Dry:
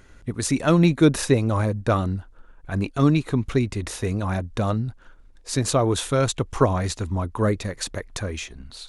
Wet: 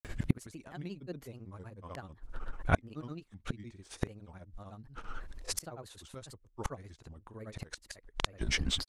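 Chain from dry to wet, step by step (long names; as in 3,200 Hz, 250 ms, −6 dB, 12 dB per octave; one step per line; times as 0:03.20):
gate with flip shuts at −20 dBFS, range −33 dB
granular cloud, grains 16 per second, pitch spread up and down by 3 semitones
level +9.5 dB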